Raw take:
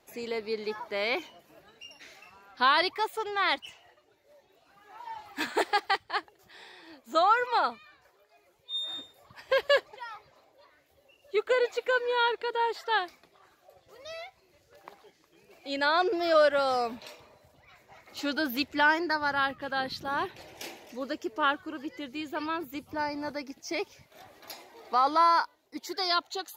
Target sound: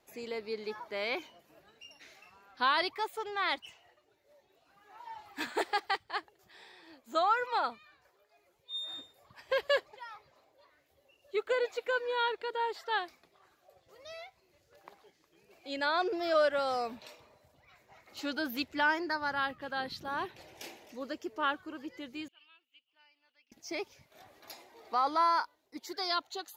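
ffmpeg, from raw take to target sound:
ffmpeg -i in.wav -filter_complex "[0:a]asettb=1/sr,asplit=3[link_01][link_02][link_03];[link_01]atrim=end=22.284[link_04];[link_02]atrim=start=22.28:end=23.52,asetpts=PTS-STARTPTS,afade=type=in:duration=0.004:curve=qsin,afade=type=out:start_time=1.236:duration=0.004:curve=qsin,bandpass=frequency=2900:width_type=q:width=16:csg=0[link_05];[link_03]atrim=start=23.516[link_06];[link_04][link_05]acrossfade=duration=0.004:curve1=hsin:curve2=qsin[link_07];[link_07][link_06]acrossfade=duration=0.004:curve1=qsin:curve2=hsin,volume=-5dB" out.wav

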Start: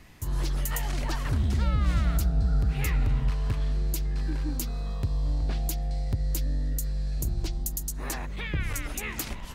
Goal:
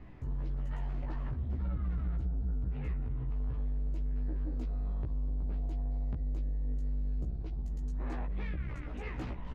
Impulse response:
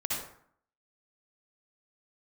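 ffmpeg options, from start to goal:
-filter_complex "[0:a]lowpass=2600,tiltshelf=frequency=1200:gain=6,alimiter=limit=-22.5dB:level=0:latency=1:release=152,asoftclip=type=tanh:threshold=-27.5dB,asplit=2[link_01][link_02];[link_02]adelay=16,volume=-2dB[link_03];[link_01][link_03]amix=inputs=2:normalize=0,volume=-5.5dB"

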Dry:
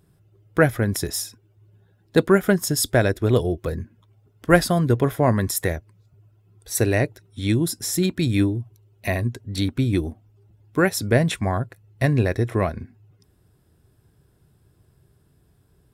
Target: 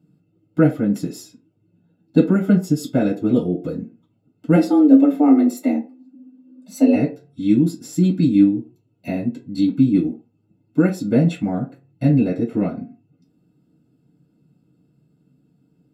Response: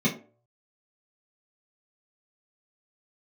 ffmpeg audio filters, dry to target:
-filter_complex "[0:a]asplit=3[link_01][link_02][link_03];[link_01]afade=type=out:start_time=4.55:duration=0.02[link_04];[link_02]afreqshift=150,afade=type=in:start_time=4.55:duration=0.02,afade=type=out:start_time=6.94:duration=0.02[link_05];[link_03]afade=type=in:start_time=6.94:duration=0.02[link_06];[link_04][link_05][link_06]amix=inputs=3:normalize=0[link_07];[1:a]atrim=start_sample=2205,asetrate=52920,aresample=44100[link_08];[link_07][link_08]afir=irnorm=-1:irlink=0,volume=-15.5dB"

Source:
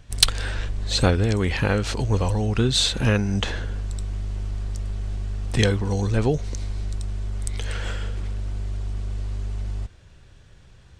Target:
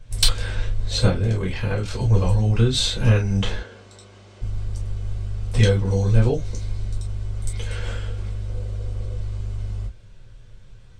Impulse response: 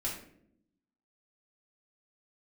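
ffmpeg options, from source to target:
-filter_complex "[0:a]asettb=1/sr,asplit=3[link_01][link_02][link_03];[link_01]atrim=end=1.064[link_04];[link_02]atrim=start=1.06:end=1.94,asetpts=PTS-STARTPTS,afade=type=in:duration=0.004:curve=qsin,afade=type=out:start_time=0.876:duration=0.004:curve=qsin,tremolo=f=40:d=0.857[link_05];[link_03]atrim=start=1.936[link_06];[link_04][link_05]acrossfade=duration=0.004:curve1=hsin:curve2=qsin[link_07];[link_07][link_06]acrossfade=duration=0.004:curve1=qsin:curve2=hsin,asettb=1/sr,asplit=3[link_08][link_09][link_10];[link_08]atrim=end=3.574[link_11];[link_09]atrim=start=3.57:end=4.42,asetpts=PTS-STARTPTS,afade=type=in:duration=0.004:curve=qsin,afade=type=out:start_time=0.846:duration=0.004:curve=qsin,highpass=290,lowpass=7000[link_12];[link_10]atrim=start=4.416[link_13];[link_11][link_12]acrossfade=duration=0.004:curve1=hsin:curve2=qsin[link_14];[link_14][link_13]acrossfade=duration=0.004:curve1=qsin:curve2=hsin,asettb=1/sr,asplit=3[link_15][link_16][link_17];[link_15]atrim=end=8.474[link_18];[link_16]atrim=start=8.47:end=9.17,asetpts=PTS-STARTPTS,afade=type=in:duration=0.004:curve=qsin,afade=type=out:start_time=0.696:duration=0.004:curve=qsin,equalizer=frequency=500:width_type=o:width=0.35:gain=12[link_19];[link_17]atrim=start=9.166[link_20];[link_18][link_19]acrossfade=duration=0.004:curve1=hsin:curve2=qsin[link_21];[link_21][link_20]acrossfade=duration=0.004:curve1=qsin:curve2=hsin[link_22];[1:a]atrim=start_sample=2205,atrim=end_sample=3969,asetrate=70560,aresample=44100[link_23];[link_22][link_23]afir=irnorm=-1:irlink=0"

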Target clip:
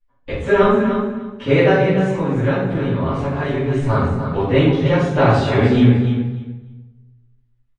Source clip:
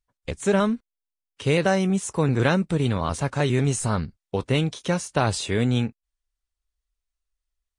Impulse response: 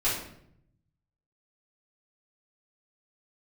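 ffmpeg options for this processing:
-filter_complex "[0:a]lowpass=2600,equalizer=frequency=420:width=2.4:gain=3,aecho=1:1:7.4:0.36,bandreject=frequency=48.24:width_type=h:width=4,bandreject=frequency=96.48:width_type=h:width=4,bandreject=frequency=144.72:width_type=h:width=4,bandreject=frequency=192.96:width_type=h:width=4,bandreject=frequency=241.2:width_type=h:width=4,bandreject=frequency=289.44:width_type=h:width=4,bandreject=frequency=337.68:width_type=h:width=4,bandreject=frequency=385.92:width_type=h:width=4,bandreject=frequency=434.16:width_type=h:width=4,bandreject=frequency=482.4:width_type=h:width=4,bandreject=frequency=530.64:width_type=h:width=4,bandreject=frequency=578.88:width_type=h:width=4,bandreject=frequency=627.12:width_type=h:width=4,bandreject=frequency=675.36:width_type=h:width=4,bandreject=frequency=723.6:width_type=h:width=4,bandreject=frequency=771.84:width_type=h:width=4,bandreject=frequency=820.08:width_type=h:width=4,bandreject=frequency=868.32:width_type=h:width=4,asettb=1/sr,asplit=3[link_01][link_02][link_03];[link_01]atrim=end=1.704[link_04];[link_02]atrim=start=1.7:end=3.89,asetpts=PTS-STARTPTS,afade=type=in:duration=0.004:curve=qsin,afade=type=out:start_time=2.186:duration=0.004:curve=qsin,acompressor=threshold=-30dB:ratio=2[link_05];[link_03]atrim=start=3.886[link_06];[link_04][link_05]acrossfade=duration=0.004:curve1=hsin:curve2=qsin[link_07];[link_07][link_06]acrossfade=duration=0.004:curve1=qsin:curve2=hsin,aecho=1:1:296|592|888:0.376|0.0639|0.0109[link_08];[1:a]atrim=start_sample=2205,asetrate=34839,aresample=44100[link_09];[link_08][link_09]afir=irnorm=-1:irlink=0,volume=-4dB"

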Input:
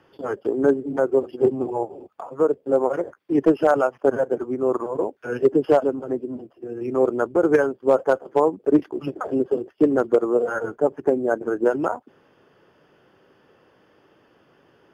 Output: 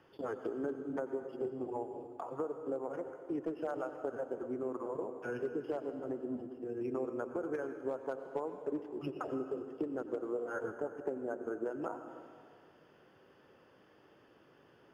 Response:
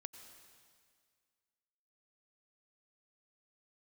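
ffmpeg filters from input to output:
-filter_complex "[0:a]acompressor=threshold=-29dB:ratio=6[link_01];[1:a]atrim=start_sample=2205[link_02];[link_01][link_02]afir=irnorm=-1:irlink=0,volume=-1dB"

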